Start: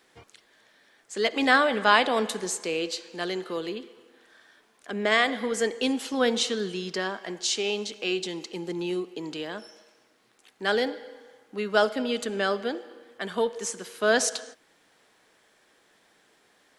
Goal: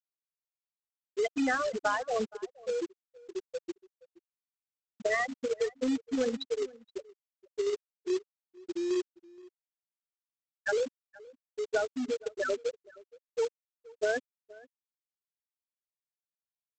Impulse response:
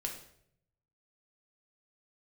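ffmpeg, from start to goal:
-filter_complex "[0:a]afftfilt=real='re*gte(hypot(re,im),0.355)':imag='im*gte(hypot(re,im),0.355)':win_size=1024:overlap=0.75,acompressor=threshold=-27dB:ratio=16,aresample=16000,acrusher=bits=3:mode=log:mix=0:aa=0.000001,aresample=44100,asplit=2[a][b];[b]adelay=472.3,volume=-22dB,highshelf=f=4k:g=-10.6[c];[a][c]amix=inputs=2:normalize=0,volume=1.5dB"

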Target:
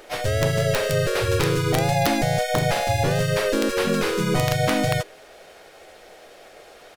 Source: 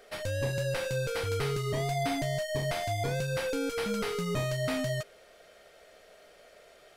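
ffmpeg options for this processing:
-filter_complex "[0:a]asplit=3[a][b][c];[b]asetrate=35002,aresample=44100,atempo=1.25992,volume=-3dB[d];[c]asetrate=52444,aresample=44100,atempo=0.840896,volume=-2dB[e];[a][d][e]amix=inputs=3:normalize=0,aeval=exprs='(mod(7.08*val(0)+1,2)-1)/7.08':c=same,volume=6.5dB"

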